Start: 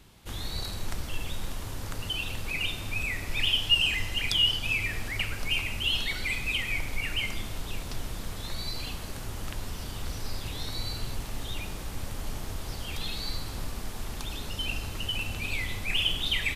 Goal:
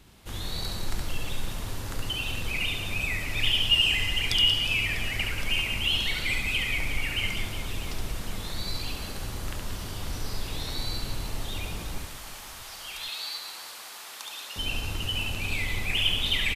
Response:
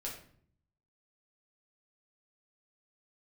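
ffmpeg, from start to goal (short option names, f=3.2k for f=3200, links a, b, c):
-filter_complex "[0:a]asettb=1/sr,asplit=3[a][b][c];[a]atrim=end=11.984[d];[b]atrim=start=11.98:end=14.56,asetpts=PTS-STARTPTS,afade=t=in:d=0.004:c=qsin,afade=t=out:st=2.576:d=0.004:c=qsin,highpass=910[e];[c]atrim=start=14.556[f];[d][e]acrossfade=d=0.004:c1=hsin:c2=qsin[g];[g][f]acrossfade=d=0.004:c1=qsin:c2=hsin,aecho=1:1:70|182|361.2|647.9|1107:0.631|0.398|0.251|0.158|0.1"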